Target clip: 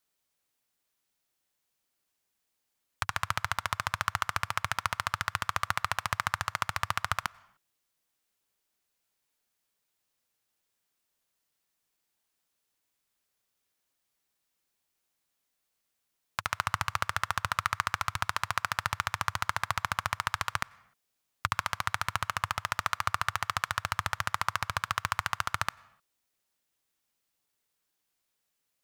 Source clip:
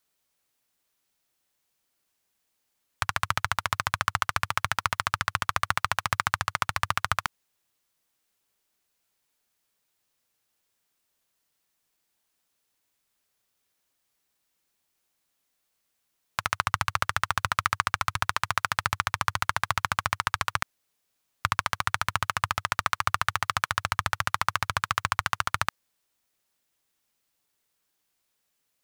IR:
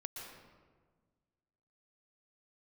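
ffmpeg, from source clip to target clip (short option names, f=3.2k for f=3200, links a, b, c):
-filter_complex "[0:a]asplit=2[a][b];[1:a]atrim=start_sample=2205,afade=t=out:st=0.45:d=0.01,atrim=end_sample=20286,asetrate=57330,aresample=44100[c];[b][c]afir=irnorm=-1:irlink=0,volume=-16dB[d];[a][d]amix=inputs=2:normalize=0,volume=-4.5dB"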